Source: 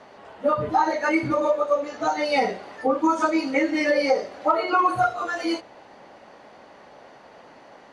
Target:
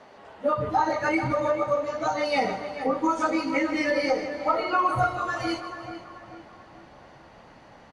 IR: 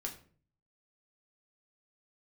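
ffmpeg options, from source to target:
-filter_complex "[0:a]asplit=2[a][b];[b]aecho=0:1:157|314|471|628|785|942:0.211|0.116|0.0639|0.0352|0.0193|0.0106[c];[a][c]amix=inputs=2:normalize=0,asubboost=boost=5:cutoff=160,asplit=2[d][e];[e]adelay=436,lowpass=f=2.2k:p=1,volume=-10dB,asplit=2[f][g];[g]adelay=436,lowpass=f=2.2k:p=1,volume=0.47,asplit=2[h][i];[i]adelay=436,lowpass=f=2.2k:p=1,volume=0.47,asplit=2[j][k];[k]adelay=436,lowpass=f=2.2k:p=1,volume=0.47,asplit=2[l][m];[m]adelay=436,lowpass=f=2.2k:p=1,volume=0.47[n];[f][h][j][l][n]amix=inputs=5:normalize=0[o];[d][o]amix=inputs=2:normalize=0,volume=-2.5dB"

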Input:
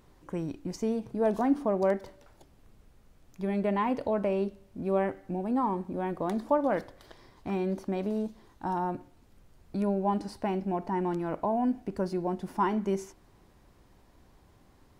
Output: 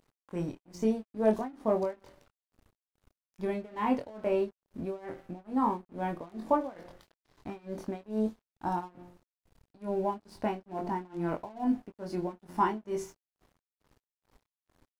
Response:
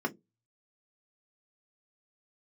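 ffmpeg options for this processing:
-filter_complex "[0:a]asplit=2[a][b];[b]adelay=23,volume=-4dB[c];[a][c]amix=inputs=2:normalize=0,bandreject=f=177.1:t=h:w=4,bandreject=f=354.2:t=h:w=4,bandreject=f=531.3:t=h:w=4,bandreject=f=708.4:t=h:w=4,bandreject=f=885.5:t=h:w=4,bandreject=f=1.0626k:t=h:w=4,tremolo=f=2.3:d=0.93,aeval=exprs='sgn(val(0))*max(abs(val(0))-0.00141,0)':c=same"

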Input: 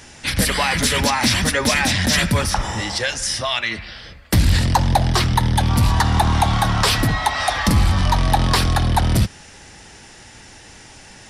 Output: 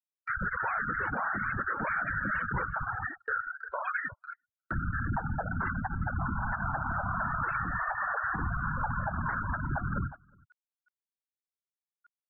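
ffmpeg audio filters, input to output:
-af "asetrate=40517,aresample=44100,crystalizer=i=3.5:c=0,acrusher=bits=5:mode=log:mix=0:aa=0.000001,lowpass=f=1.4k:t=q:w=9.1,afftfilt=real='hypot(re,im)*cos(2*PI*random(0))':imag='hypot(re,im)*sin(2*PI*random(1))':win_size=512:overlap=0.75,afftfilt=real='re*gte(hypot(re,im),0.141)':imag='im*gte(hypot(re,im),0.141)':win_size=1024:overlap=0.75,alimiter=limit=-16.5dB:level=0:latency=1:release=127,aecho=1:1:362:0.075,agate=range=-36dB:threshold=-32dB:ratio=16:detection=peak,areverse,acompressor=mode=upward:threshold=-31dB:ratio=2.5,areverse,volume=-6.5dB"

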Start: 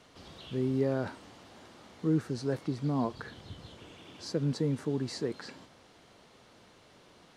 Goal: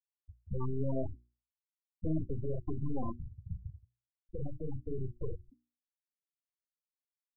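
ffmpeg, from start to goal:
-filter_complex "[0:a]highshelf=f=2.7k:g=-9,aeval=exprs='0.126*(cos(1*acos(clip(val(0)/0.126,-1,1)))-cos(1*PI/2))+0.00178*(cos(3*acos(clip(val(0)/0.126,-1,1)))-cos(3*PI/2))+0.000794*(cos(5*acos(clip(val(0)/0.126,-1,1)))-cos(5*PI/2))+0.0398*(cos(8*acos(clip(val(0)/0.126,-1,1)))-cos(8*PI/2))':c=same,asoftclip=type=tanh:threshold=-25.5dB,asettb=1/sr,asplit=3[a][b][c];[a]atrim=end=3.064[d];[b]atrim=start=3.06:end=5.21,asetpts=PTS-STARTPTS,afade=t=in:d=0.004:c=qsin,afade=t=out:st=2.146:d=0.004:c=qsin,acrossover=split=100|420[e][f][g];[e]acompressor=threshold=-43dB:ratio=4[h];[f]acompressor=threshold=-44dB:ratio=4[i];[g]acompressor=threshold=-41dB:ratio=4[j];[h][i][j]amix=inputs=3:normalize=0[k];[c]atrim=start=5.206[l];[d][k]acrossfade=d=0.004:c1=hsin:c2=qsin[m];[m][l]acrossfade=d=0.004:c1=qsin:c2=hsin,equalizer=f=67:t=o:w=1.4:g=10.5,bandreject=f=1.3k:w=15,aecho=1:1:38|68:0.562|0.126,alimiter=level_in=3dB:limit=-24dB:level=0:latency=1:release=45,volume=-3dB,afftfilt=real='re*gte(hypot(re,im),0.0562)':imag='im*gte(hypot(re,im),0.0562)':win_size=1024:overlap=0.75,bandreject=f=60:t=h:w=6,bandreject=f=120:t=h:w=6,bandreject=f=180:t=h:w=6,bandreject=f=240:t=h:w=6,bandreject=f=300:t=h:w=6,bandreject=f=360:t=h:w=6,volume=2.5dB"

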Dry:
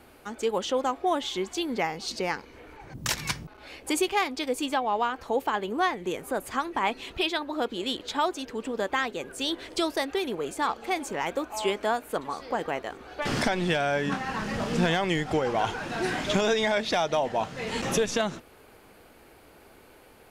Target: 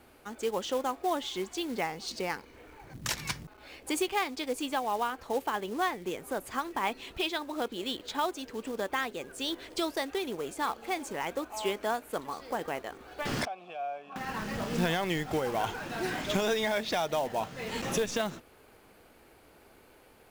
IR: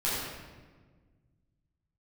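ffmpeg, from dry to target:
-filter_complex "[0:a]acrusher=bits=4:mode=log:mix=0:aa=0.000001,asettb=1/sr,asplit=3[a][b][c];[a]atrim=end=13.454[d];[b]atrim=start=13.45:end=14.16,asetpts=PTS-STARTPTS,afade=t=in:d=0.004:c=qsin,afade=t=out:st=0.706:d=0.004:c=qsin,asplit=3[e][f][g];[e]bandpass=f=730:t=q:w=8,volume=0dB[h];[f]bandpass=f=1.09k:t=q:w=8,volume=-6dB[i];[g]bandpass=f=2.44k:t=q:w=8,volume=-9dB[j];[h][i][j]amix=inputs=3:normalize=0[k];[c]atrim=start=14.156[l];[d][k]acrossfade=d=0.004:c1=hsin:c2=qsin[m];[m][l]acrossfade=d=0.004:c1=qsin:c2=hsin,volume=-4.5dB"

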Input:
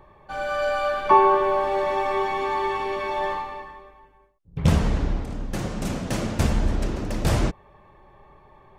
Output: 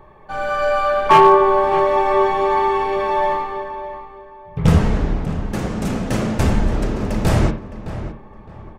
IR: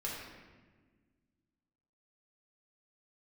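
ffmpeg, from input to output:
-filter_complex "[0:a]aeval=exprs='0.316*(abs(mod(val(0)/0.316+3,4)-2)-1)':c=same,asplit=2[a][b];[b]adelay=613,lowpass=f=2.5k:p=1,volume=-12dB,asplit=2[c][d];[d]adelay=613,lowpass=f=2.5k:p=1,volume=0.29,asplit=2[e][f];[f]adelay=613,lowpass=f=2.5k:p=1,volume=0.29[g];[a][c][e][g]amix=inputs=4:normalize=0,asplit=2[h][i];[1:a]atrim=start_sample=2205,atrim=end_sample=4410,lowpass=2.7k[j];[i][j]afir=irnorm=-1:irlink=0,volume=-2.5dB[k];[h][k]amix=inputs=2:normalize=0,volume=2dB"

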